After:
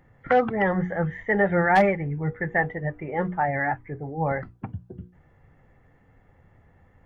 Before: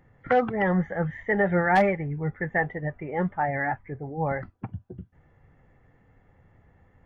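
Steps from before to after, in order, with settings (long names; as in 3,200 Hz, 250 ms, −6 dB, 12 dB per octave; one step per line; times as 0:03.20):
mains-hum notches 60/120/180/240/300/360/420/480 Hz
level +2 dB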